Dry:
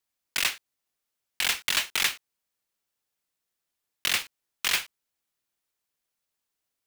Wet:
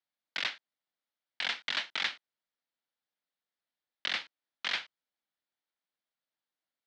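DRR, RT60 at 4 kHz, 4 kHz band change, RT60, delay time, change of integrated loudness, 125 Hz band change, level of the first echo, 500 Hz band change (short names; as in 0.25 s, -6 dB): none, none, -6.5 dB, none, none, -7.5 dB, under -10 dB, none, -5.5 dB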